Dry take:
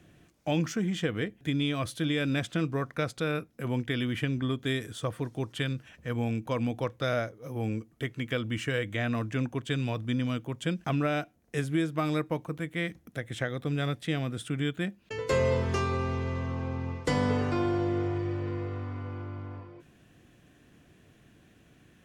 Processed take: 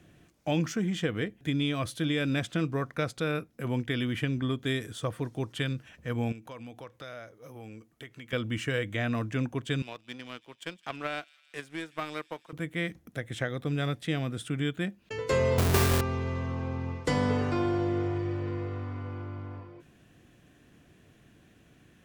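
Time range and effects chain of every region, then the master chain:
6.32–8.33 low shelf 420 Hz -8 dB + compressor 2.5:1, threshold -44 dBFS
9.82–12.53 weighting filter A + power-law curve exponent 1.4 + thin delay 0.165 s, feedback 74%, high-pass 3300 Hz, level -17 dB
15.58–16.01 half-waves squared off + high shelf 8700 Hz +8.5 dB
whole clip: dry

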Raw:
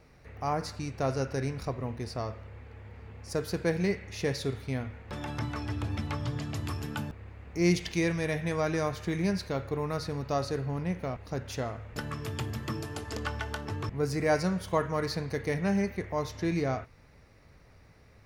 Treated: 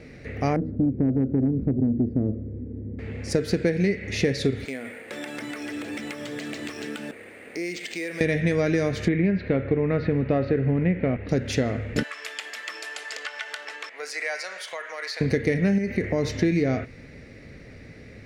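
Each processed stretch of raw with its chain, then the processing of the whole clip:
0.56–2.99 synth low-pass 290 Hz, resonance Q 2.1 + tube stage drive 28 dB, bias 0.35
4.65–8.21 HPF 470 Hz + compressor, threshold -43 dBFS + sample-rate reducer 11000 Hz
9.08–11.29 companded quantiser 8-bit + LPF 2800 Hz 24 dB/oct
12.03–15.21 HPF 760 Hz 24 dB/oct + compressor 2.5:1, threshold -42 dBFS
15.78–16.34 notch 3400 Hz, Q 10 + compressor 3:1, threshold -32 dBFS
whole clip: graphic EQ 125/250/500/1000/2000/4000/8000 Hz +3/+10/+7/-11/+11/+5/+10 dB; compressor 12:1, threshold -26 dBFS; high shelf 4200 Hz -12 dB; gain +8 dB

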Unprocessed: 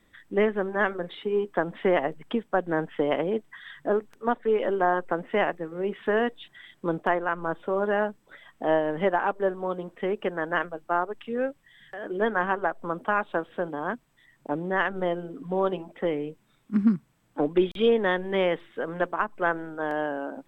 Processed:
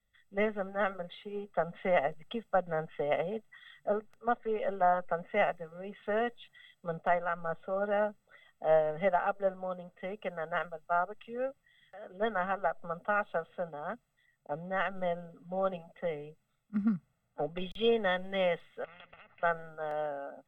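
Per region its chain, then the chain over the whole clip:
18.84–19.43 compressor 4:1, threshold -31 dBFS + ladder low-pass 1800 Hz, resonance 60% + spectral compressor 10:1
whole clip: comb 1.5 ms, depth 96%; three-band expander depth 40%; gain -8.5 dB

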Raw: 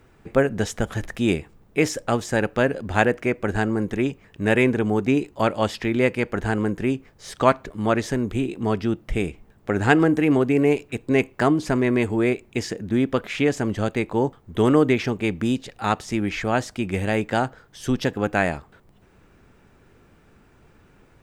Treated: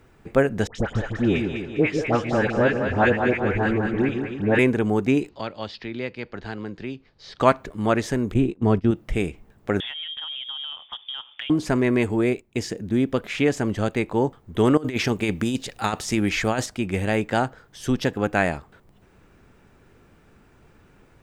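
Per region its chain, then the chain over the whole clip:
0.67–4.59 LPF 3300 Hz + dispersion highs, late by 83 ms, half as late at 1300 Hz + split-band echo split 460 Hz, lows 0.151 s, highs 0.201 s, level -5.5 dB
5.29–7.4 ladder low-pass 4900 Hz, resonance 60% + three-band squash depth 40%
8.34–8.91 gate -30 dBFS, range -19 dB + tilt -2 dB/oct
9.8–11.5 inverted band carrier 3500 Hz + compressor 20:1, threshold -29 dBFS
12.21–13.28 gate -41 dBFS, range -11 dB + bell 1400 Hz -4 dB 2.2 oct
14.77–16.66 high shelf 3600 Hz +7 dB + negative-ratio compressor -22 dBFS, ratio -0.5
whole clip: dry

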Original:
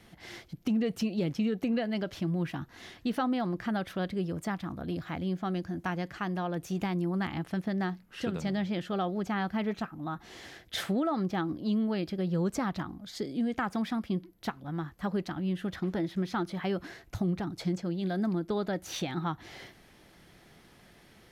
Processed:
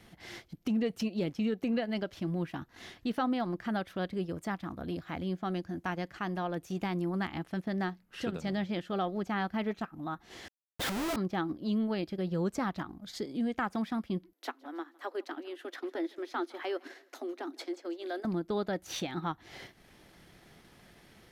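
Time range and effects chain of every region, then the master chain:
10.48–11.16 dispersion highs, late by 75 ms, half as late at 840 Hz + Schmitt trigger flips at -36.5 dBFS
14.33–18.25 Chebyshev high-pass 250 Hz, order 10 + feedback echo 0.159 s, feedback 45%, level -19.5 dB
whole clip: dynamic EQ 140 Hz, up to -5 dB, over -45 dBFS, Q 1.8; transient shaper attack -2 dB, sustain -7 dB

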